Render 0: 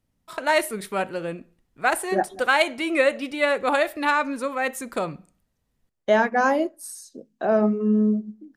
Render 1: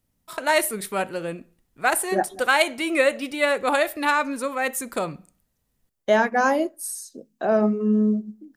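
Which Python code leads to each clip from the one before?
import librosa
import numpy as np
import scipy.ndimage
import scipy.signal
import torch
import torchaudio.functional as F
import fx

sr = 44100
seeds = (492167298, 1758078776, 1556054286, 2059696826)

y = fx.high_shelf(x, sr, hz=7700.0, db=10.5)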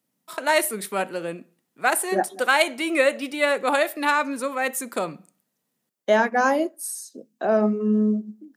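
y = scipy.signal.sosfilt(scipy.signal.butter(4, 170.0, 'highpass', fs=sr, output='sos'), x)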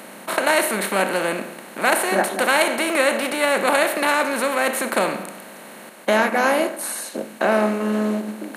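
y = fx.bin_compress(x, sr, power=0.4)
y = F.gain(torch.from_numpy(y), -3.0).numpy()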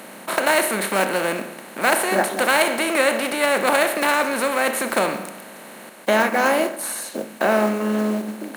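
y = fx.block_float(x, sr, bits=5)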